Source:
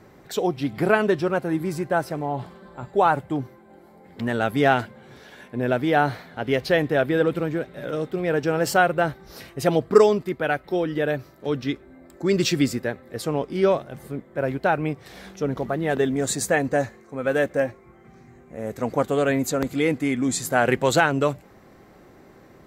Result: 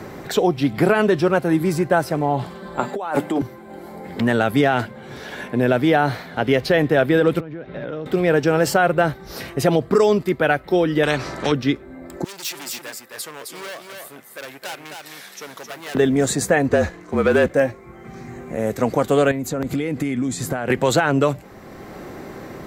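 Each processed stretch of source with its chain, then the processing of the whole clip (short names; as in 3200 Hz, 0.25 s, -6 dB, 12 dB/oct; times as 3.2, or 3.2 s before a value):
2.79–3.42 HPF 200 Hz 24 dB/oct + notches 50/100/150/200/250/300/350 Hz + negative-ratio compressor -31 dBFS
7.4–8.06 compressor 16:1, threshold -36 dBFS + air absorption 250 m
11.03–11.52 LPF 8900 Hz 24 dB/oct + spectral compressor 2:1
12.24–15.95 hard clip -25 dBFS + differentiator + echo 0.263 s -6 dB
16.69–17.51 high shelf 9700 Hz -9 dB + sample leveller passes 1 + frequency shift -42 Hz
19.31–20.7 compressor 16:1, threshold -30 dBFS + low shelf 230 Hz +6.5 dB
whole clip: maximiser +11.5 dB; three-band squash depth 40%; gain -5.5 dB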